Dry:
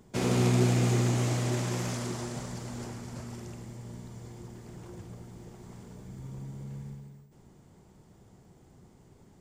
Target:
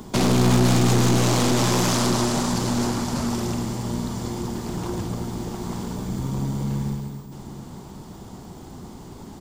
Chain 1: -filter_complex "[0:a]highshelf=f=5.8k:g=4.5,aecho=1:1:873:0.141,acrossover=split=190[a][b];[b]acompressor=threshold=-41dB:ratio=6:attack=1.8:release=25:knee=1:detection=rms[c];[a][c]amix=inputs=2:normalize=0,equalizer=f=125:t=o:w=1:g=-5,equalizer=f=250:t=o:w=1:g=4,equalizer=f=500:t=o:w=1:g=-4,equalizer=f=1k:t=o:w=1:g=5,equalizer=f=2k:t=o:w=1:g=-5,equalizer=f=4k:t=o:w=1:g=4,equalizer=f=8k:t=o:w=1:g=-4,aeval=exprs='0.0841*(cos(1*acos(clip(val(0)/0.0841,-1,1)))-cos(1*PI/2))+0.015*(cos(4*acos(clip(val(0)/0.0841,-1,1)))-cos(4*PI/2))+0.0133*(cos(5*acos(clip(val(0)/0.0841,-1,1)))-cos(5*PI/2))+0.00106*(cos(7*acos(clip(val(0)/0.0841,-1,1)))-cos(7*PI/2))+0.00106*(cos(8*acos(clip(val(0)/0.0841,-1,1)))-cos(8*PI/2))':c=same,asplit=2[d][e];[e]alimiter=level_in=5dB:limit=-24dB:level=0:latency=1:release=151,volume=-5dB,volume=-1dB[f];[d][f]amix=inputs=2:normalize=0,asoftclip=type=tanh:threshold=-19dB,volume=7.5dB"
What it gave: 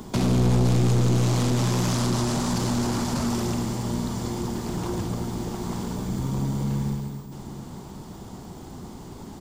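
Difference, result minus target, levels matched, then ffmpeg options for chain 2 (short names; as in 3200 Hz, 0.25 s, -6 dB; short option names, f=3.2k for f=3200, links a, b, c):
soft clip: distortion +19 dB; compressor: peak gain reduction +8 dB
-filter_complex "[0:a]highshelf=f=5.8k:g=4.5,aecho=1:1:873:0.141,acrossover=split=190[a][b];[b]acompressor=threshold=-31.5dB:ratio=6:attack=1.8:release=25:knee=1:detection=rms[c];[a][c]amix=inputs=2:normalize=0,equalizer=f=125:t=o:w=1:g=-5,equalizer=f=250:t=o:w=1:g=4,equalizer=f=500:t=o:w=1:g=-4,equalizer=f=1k:t=o:w=1:g=5,equalizer=f=2k:t=o:w=1:g=-5,equalizer=f=4k:t=o:w=1:g=4,equalizer=f=8k:t=o:w=1:g=-4,aeval=exprs='0.0841*(cos(1*acos(clip(val(0)/0.0841,-1,1)))-cos(1*PI/2))+0.015*(cos(4*acos(clip(val(0)/0.0841,-1,1)))-cos(4*PI/2))+0.0133*(cos(5*acos(clip(val(0)/0.0841,-1,1)))-cos(5*PI/2))+0.00106*(cos(7*acos(clip(val(0)/0.0841,-1,1)))-cos(7*PI/2))+0.00106*(cos(8*acos(clip(val(0)/0.0841,-1,1)))-cos(8*PI/2))':c=same,asplit=2[d][e];[e]alimiter=level_in=5dB:limit=-24dB:level=0:latency=1:release=151,volume=-5dB,volume=-1dB[f];[d][f]amix=inputs=2:normalize=0,asoftclip=type=tanh:threshold=-8dB,volume=7.5dB"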